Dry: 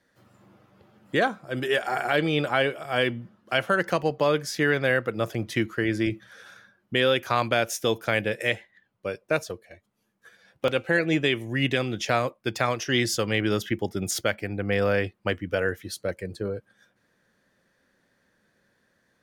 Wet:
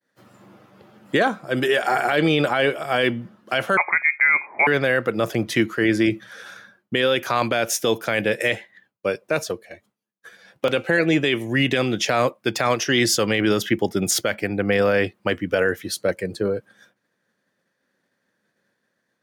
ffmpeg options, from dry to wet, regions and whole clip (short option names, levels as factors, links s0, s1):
-filter_complex "[0:a]asettb=1/sr,asplit=3[s0][s1][s2];[s0]atrim=end=3.774[s3];[s1]atrim=start=3.77:end=4.67,asetpts=PTS-STARTPTS,afade=t=in:d=0.004:c=qsin,afade=t=out:st=0.896:d=0.004:c=qsin,highpass=240,lowpass=f=2200:t=q:w=0.5098,lowpass=f=2200:t=q:w=0.6013,lowpass=f=2200:t=q:w=0.9,lowpass=f=2200:t=q:w=2.563,afreqshift=-2600[s4];[s2]atrim=start=4.666[s5];[s3][s4]acrossfade=d=0.004:c1=hsin:c2=qsin[s6];[s6][s5]acrossfade=d=0.004:c1=qsin:c2=hsin,agate=range=0.0224:threshold=0.00112:ratio=3:detection=peak,highpass=140,alimiter=limit=0.141:level=0:latency=1:release=23,volume=2.51"